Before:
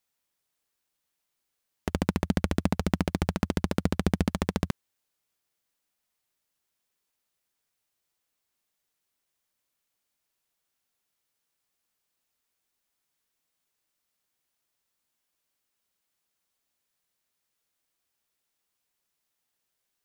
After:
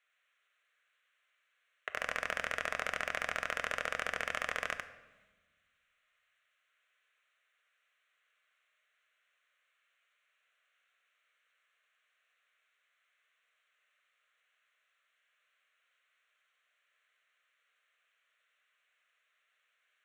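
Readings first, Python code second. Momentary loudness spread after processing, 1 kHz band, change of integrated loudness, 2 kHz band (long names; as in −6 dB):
6 LU, −2.5 dB, −6.5 dB, +5.5 dB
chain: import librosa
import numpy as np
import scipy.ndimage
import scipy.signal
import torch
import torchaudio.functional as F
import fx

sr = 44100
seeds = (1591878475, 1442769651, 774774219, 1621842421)

p1 = scipy.signal.sosfilt(scipy.signal.cheby2(4, 40, 300.0, 'highpass', fs=sr, output='sos'), x)
p2 = fx.peak_eq(p1, sr, hz=1300.0, db=4.0, octaves=1.7)
p3 = fx.fixed_phaser(p2, sr, hz=2100.0, stages=4)
p4 = fx.over_compress(p3, sr, threshold_db=-41.0, ratio=-0.5)
p5 = p3 + (p4 * librosa.db_to_amplitude(3.0))
p6 = fx.air_absorb(p5, sr, metres=150.0)
p7 = p6 + 10.0 ** (-3.0 / 20.0) * np.pad(p6, (int(96 * sr / 1000.0), 0))[:len(p6)]
p8 = fx.transient(p7, sr, attack_db=-4, sustain_db=6)
y = fx.room_shoebox(p8, sr, seeds[0], volume_m3=760.0, walls='mixed', distance_m=0.48)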